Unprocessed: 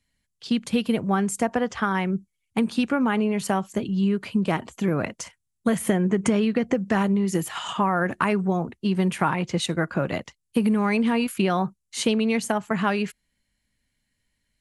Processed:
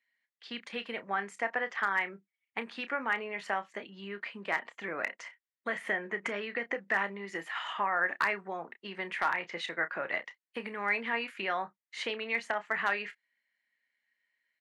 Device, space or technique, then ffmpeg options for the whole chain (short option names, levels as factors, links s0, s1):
megaphone: -filter_complex "[0:a]highpass=570,lowpass=3500,equalizer=f=1900:t=o:w=0.53:g=12,asoftclip=type=hard:threshold=0.282,asplit=2[s0][s1];[s1]adelay=30,volume=0.266[s2];[s0][s2]amix=inputs=2:normalize=0,volume=0.422"